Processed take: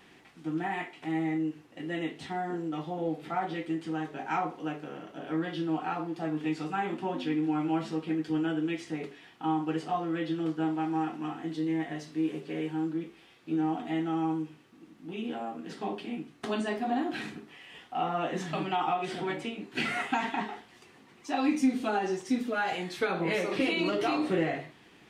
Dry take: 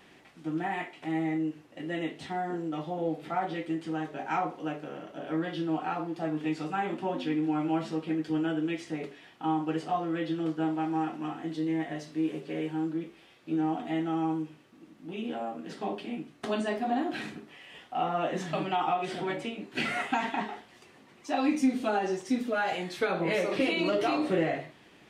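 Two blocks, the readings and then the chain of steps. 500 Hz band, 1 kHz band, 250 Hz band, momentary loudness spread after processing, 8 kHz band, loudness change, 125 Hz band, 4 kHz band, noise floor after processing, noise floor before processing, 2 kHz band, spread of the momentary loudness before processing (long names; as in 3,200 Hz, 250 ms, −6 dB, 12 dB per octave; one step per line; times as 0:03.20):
−1.5 dB, −0.5 dB, 0.0 dB, 10 LU, can't be measured, −0.5 dB, 0.0 dB, 0.0 dB, −57 dBFS, −57 dBFS, 0.0 dB, 10 LU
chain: parametric band 590 Hz −6.5 dB 0.27 octaves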